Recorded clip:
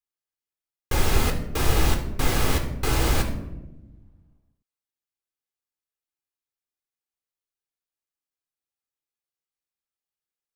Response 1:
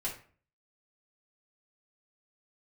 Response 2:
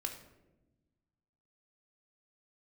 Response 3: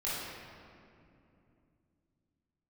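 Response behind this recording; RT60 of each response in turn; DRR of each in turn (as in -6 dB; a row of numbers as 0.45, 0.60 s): 2; 0.45, 1.0, 2.7 s; -7.0, 3.5, -10.0 dB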